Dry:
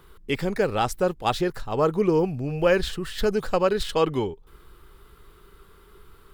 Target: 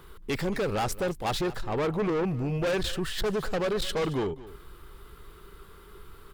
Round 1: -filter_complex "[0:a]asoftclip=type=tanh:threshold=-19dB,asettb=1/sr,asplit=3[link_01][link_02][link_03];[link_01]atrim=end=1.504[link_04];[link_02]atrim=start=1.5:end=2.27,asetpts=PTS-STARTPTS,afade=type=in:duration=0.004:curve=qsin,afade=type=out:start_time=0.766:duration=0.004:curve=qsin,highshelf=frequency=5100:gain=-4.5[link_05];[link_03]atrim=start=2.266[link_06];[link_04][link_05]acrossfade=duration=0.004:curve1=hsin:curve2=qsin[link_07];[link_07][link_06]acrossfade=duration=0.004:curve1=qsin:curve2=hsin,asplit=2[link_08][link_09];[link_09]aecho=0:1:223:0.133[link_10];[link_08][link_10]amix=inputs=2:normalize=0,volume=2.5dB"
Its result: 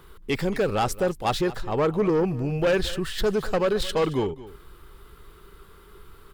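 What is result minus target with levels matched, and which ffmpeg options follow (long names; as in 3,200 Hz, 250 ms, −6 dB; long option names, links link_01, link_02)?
soft clipping: distortion −6 dB
-filter_complex "[0:a]asoftclip=type=tanh:threshold=-27dB,asettb=1/sr,asplit=3[link_01][link_02][link_03];[link_01]atrim=end=1.504[link_04];[link_02]atrim=start=1.5:end=2.27,asetpts=PTS-STARTPTS,afade=type=in:duration=0.004:curve=qsin,afade=type=out:start_time=0.766:duration=0.004:curve=qsin,highshelf=frequency=5100:gain=-4.5[link_05];[link_03]atrim=start=2.266[link_06];[link_04][link_05]acrossfade=duration=0.004:curve1=hsin:curve2=qsin[link_07];[link_07][link_06]acrossfade=duration=0.004:curve1=qsin:curve2=hsin,asplit=2[link_08][link_09];[link_09]aecho=0:1:223:0.133[link_10];[link_08][link_10]amix=inputs=2:normalize=0,volume=2.5dB"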